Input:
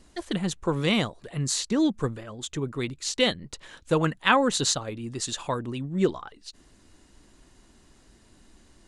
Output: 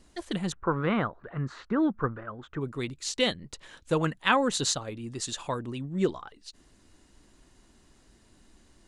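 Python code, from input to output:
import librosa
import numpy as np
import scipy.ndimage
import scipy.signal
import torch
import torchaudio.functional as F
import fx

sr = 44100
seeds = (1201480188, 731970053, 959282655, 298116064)

y = fx.lowpass_res(x, sr, hz=1400.0, q=3.6, at=(0.52, 2.61))
y = F.gain(torch.from_numpy(y), -3.0).numpy()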